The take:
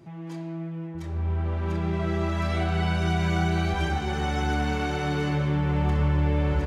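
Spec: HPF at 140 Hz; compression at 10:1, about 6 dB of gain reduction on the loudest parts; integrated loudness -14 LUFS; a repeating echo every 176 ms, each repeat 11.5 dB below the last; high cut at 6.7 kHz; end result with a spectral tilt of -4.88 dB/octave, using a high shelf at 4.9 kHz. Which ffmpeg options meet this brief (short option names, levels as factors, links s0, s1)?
-af "highpass=140,lowpass=6700,highshelf=f=4900:g=9,acompressor=threshold=0.0355:ratio=10,aecho=1:1:176|352|528:0.266|0.0718|0.0194,volume=8.91"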